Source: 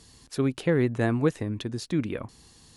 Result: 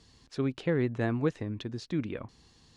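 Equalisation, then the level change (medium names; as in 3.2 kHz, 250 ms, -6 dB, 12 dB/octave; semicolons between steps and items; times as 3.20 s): distance through air 160 m; treble shelf 5.1 kHz +10.5 dB; -4.5 dB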